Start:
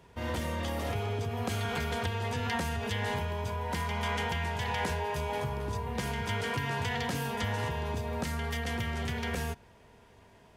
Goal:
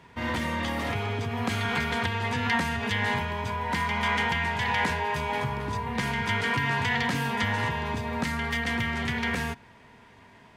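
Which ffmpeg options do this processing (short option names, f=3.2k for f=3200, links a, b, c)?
-af "equalizer=f=125:t=o:w=1:g=6,equalizer=f=250:t=o:w=1:g=9,equalizer=f=1k:t=o:w=1:g=8,equalizer=f=2k:t=o:w=1:g=11,equalizer=f=4k:t=o:w=1:g=6,equalizer=f=8k:t=o:w=1:g=3,volume=-3.5dB"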